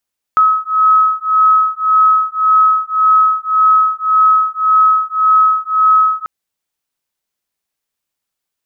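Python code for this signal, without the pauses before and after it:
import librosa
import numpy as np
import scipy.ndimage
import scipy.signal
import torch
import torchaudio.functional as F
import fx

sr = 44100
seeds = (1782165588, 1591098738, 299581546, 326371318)

y = fx.two_tone_beats(sr, length_s=5.89, hz=1280.0, beat_hz=1.8, level_db=-11.5)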